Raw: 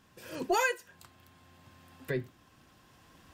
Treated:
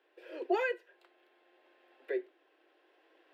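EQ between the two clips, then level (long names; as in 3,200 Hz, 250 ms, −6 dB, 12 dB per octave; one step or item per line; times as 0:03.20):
Butterworth high-pass 330 Hz 72 dB per octave
high-frequency loss of the air 480 metres
parametric band 1,100 Hz −12.5 dB 0.77 octaves
+2.5 dB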